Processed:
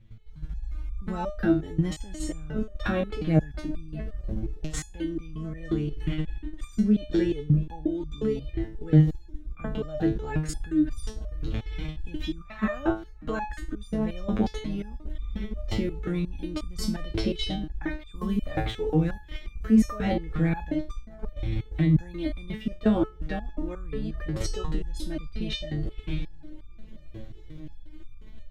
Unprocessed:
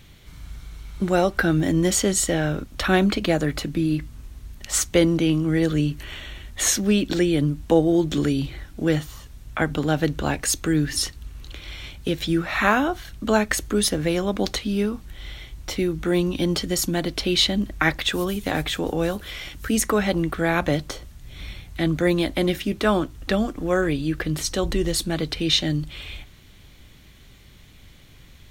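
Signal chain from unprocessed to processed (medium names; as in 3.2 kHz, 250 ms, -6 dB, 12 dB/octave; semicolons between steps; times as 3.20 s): on a send: tape echo 645 ms, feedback 75%, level -18.5 dB, low-pass 1.2 kHz; on the sum: level rider gain up to 9.5 dB; RIAA curve playback; level held to a coarse grid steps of 15 dB; loudness maximiser +5 dB; resonator arpeggio 5.6 Hz 110–1200 Hz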